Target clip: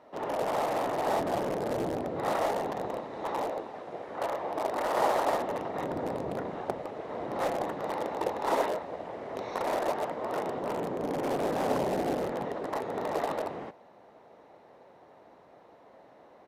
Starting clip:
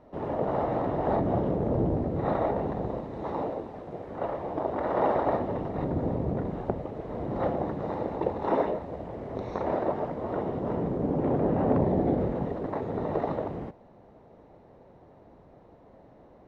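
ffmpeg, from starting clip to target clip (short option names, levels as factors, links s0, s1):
-filter_complex "[0:a]highpass=f=1100:p=1,asplit=2[s0][s1];[s1]aeval=exprs='(mod(35.5*val(0)+1,2)-1)/35.5':c=same,volume=0.282[s2];[s0][s2]amix=inputs=2:normalize=0,aresample=32000,aresample=44100,volume=1.68"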